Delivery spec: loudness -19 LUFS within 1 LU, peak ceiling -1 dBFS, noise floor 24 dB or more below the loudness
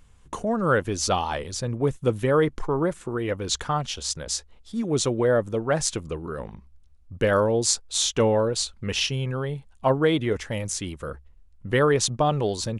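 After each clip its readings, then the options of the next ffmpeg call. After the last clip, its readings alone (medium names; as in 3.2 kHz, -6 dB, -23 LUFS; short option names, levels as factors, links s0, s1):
loudness -25.0 LUFS; peak level -5.5 dBFS; loudness target -19.0 LUFS
-> -af "volume=2,alimiter=limit=0.891:level=0:latency=1"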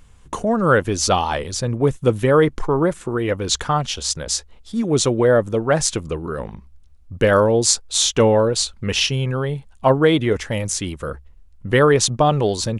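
loudness -18.5 LUFS; peak level -1.0 dBFS; noise floor -48 dBFS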